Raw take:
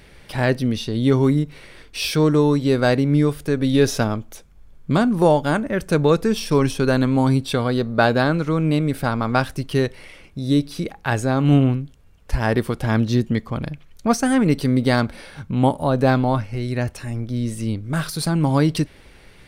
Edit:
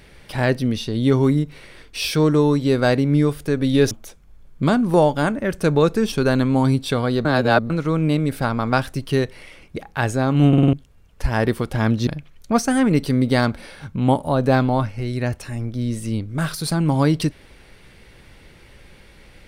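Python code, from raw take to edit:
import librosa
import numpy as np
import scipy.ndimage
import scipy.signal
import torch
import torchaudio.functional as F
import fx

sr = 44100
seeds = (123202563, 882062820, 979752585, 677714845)

y = fx.edit(x, sr, fx.cut(start_s=3.91, length_s=0.28),
    fx.cut(start_s=6.4, length_s=0.34),
    fx.reverse_span(start_s=7.87, length_s=0.45),
    fx.cut(start_s=10.38, length_s=0.47),
    fx.stutter_over(start_s=11.57, slice_s=0.05, count=5),
    fx.cut(start_s=13.16, length_s=0.46), tone=tone)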